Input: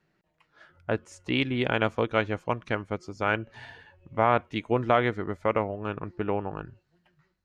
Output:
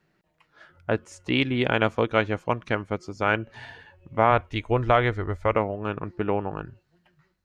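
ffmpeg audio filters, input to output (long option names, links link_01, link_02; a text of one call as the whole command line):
ffmpeg -i in.wav -filter_complex "[0:a]asplit=3[link_01][link_02][link_03];[link_01]afade=type=out:start_time=4.3:duration=0.02[link_04];[link_02]asubboost=boost=11.5:cutoff=59,afade=type=in:start_time=4.3:duration=0.02,afade=type=out:start_time=5.54:duration=0.02[link_05];[link_03]afade=type=in:start_time=5.54:duration=0.02[link_06];[link_04][link_05][link_06]amix=inputs=3:normalize=0,volume=3dB" out.wav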